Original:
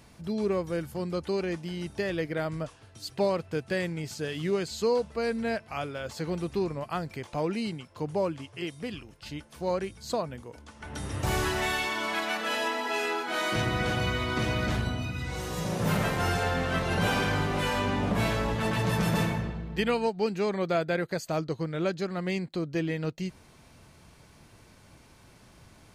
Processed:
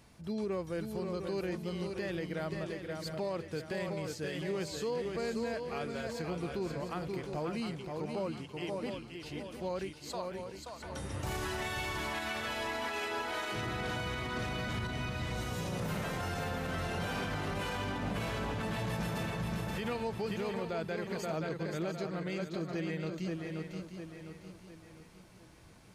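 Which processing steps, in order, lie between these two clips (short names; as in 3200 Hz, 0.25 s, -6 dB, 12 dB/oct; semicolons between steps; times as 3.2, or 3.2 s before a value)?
9.91–10.39 HPF 790 Hz; swung echo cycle 0.705 s, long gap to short 3:1, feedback 39%, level -6 dB; limiter -22 dBFS, peak gain reduction 8.5 dB; gain -5.5 dB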